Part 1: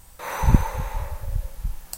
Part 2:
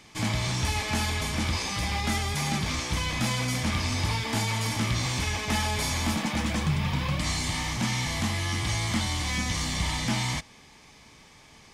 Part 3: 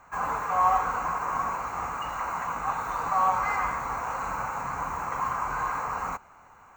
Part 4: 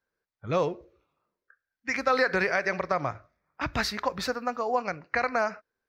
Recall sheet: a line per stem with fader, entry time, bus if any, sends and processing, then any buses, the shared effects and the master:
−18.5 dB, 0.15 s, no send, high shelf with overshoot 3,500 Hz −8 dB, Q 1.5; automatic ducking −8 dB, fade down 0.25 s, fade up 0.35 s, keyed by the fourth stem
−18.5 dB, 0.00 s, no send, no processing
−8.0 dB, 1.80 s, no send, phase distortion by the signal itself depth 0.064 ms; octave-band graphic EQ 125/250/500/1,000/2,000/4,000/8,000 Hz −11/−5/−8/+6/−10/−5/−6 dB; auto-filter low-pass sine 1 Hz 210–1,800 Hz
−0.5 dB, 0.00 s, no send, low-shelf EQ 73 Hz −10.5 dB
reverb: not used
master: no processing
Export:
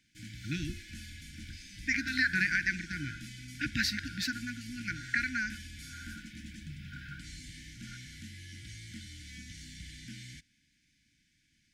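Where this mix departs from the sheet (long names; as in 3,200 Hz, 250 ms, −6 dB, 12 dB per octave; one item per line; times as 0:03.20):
stem 1: missing high shelf with overshoot 3,500 Hz −8 dB, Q 1.5
master: extra linear-phase brick-wall band-stop 340–1,400 Hz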